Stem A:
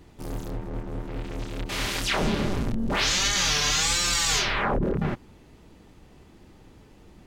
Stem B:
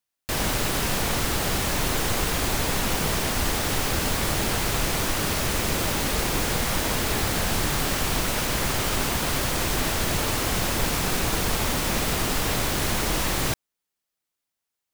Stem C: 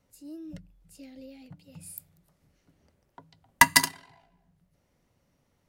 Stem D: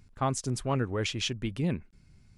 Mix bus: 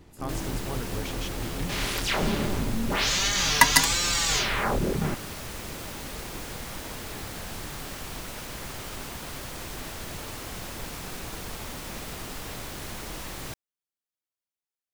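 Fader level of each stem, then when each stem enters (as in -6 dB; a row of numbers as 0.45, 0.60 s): -1.5, -12.5, 0.0, -8.0 dB; 0.00, 0.00, 0.00, 0.00 s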